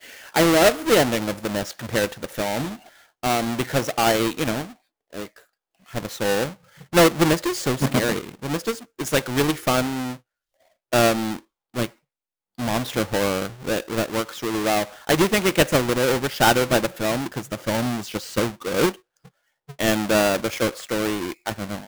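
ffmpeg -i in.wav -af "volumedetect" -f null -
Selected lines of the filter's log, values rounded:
mean_volume: -23.2 dB
max_volume: -9.6 dB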